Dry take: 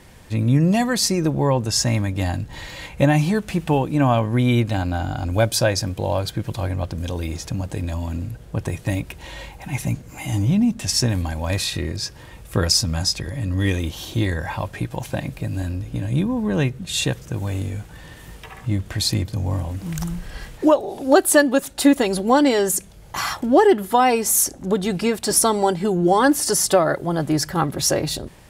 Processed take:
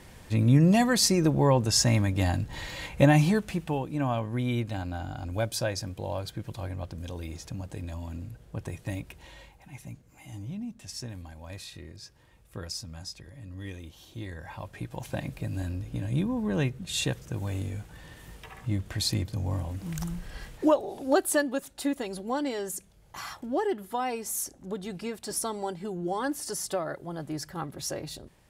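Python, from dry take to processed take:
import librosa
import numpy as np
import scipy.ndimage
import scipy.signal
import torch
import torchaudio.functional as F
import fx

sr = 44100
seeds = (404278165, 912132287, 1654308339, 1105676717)

y = fx.gain(x, sr, db=fx.line((3.27, -3.0), (3.72, -11.0), (9.16, -11.0), (9.74, -19.0), (14.09, -19.0), (15.2, -7.0), (20.84, -7.0), (21.84, -14.5)))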